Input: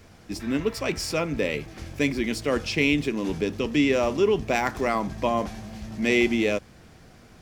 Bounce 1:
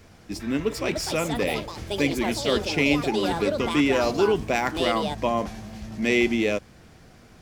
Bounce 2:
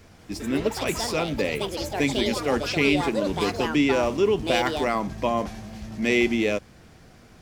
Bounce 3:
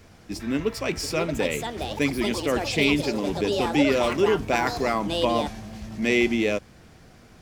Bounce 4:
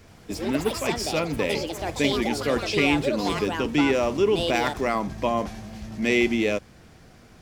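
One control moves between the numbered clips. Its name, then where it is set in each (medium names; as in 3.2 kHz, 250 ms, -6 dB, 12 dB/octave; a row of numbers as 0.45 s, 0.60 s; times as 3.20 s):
ever faster or slower copies, time: 491 ms, 191 ms, 822 ms, 80 ms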